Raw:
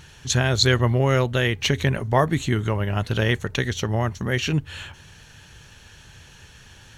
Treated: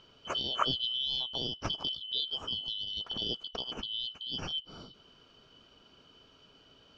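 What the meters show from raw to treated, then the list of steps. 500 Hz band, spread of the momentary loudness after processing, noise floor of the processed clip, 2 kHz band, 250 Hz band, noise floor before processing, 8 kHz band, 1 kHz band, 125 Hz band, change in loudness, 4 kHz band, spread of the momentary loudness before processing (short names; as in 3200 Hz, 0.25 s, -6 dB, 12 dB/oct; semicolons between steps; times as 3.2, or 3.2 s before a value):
-21.0 dB, 7 LU, -62 dBFS, -23.0 dB, -20.5 dB, -49 dBFS, -23.0 dB, -11.5 dB, -27.5 dB, -11.0 dB, -2.0 dB, 7 LU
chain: four-band scrambler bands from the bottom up 3412; LPF 3400 Hz 12 dB/oct; high shelf 2200 Hz -8 dB; gain -6.5 dB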